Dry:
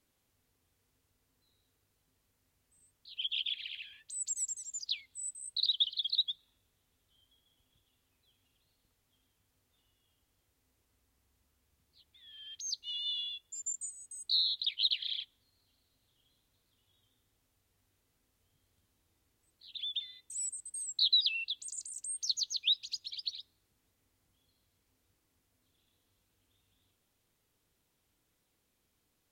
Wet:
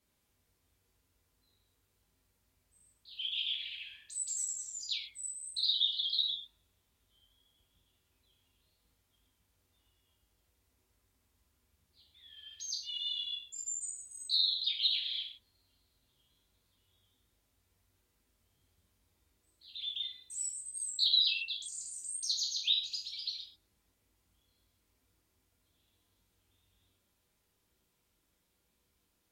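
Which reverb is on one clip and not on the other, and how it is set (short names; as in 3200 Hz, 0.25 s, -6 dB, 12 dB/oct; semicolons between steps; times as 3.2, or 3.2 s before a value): non-linear reverb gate 0.17 s falling, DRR -2.5 dB; gain -4 dB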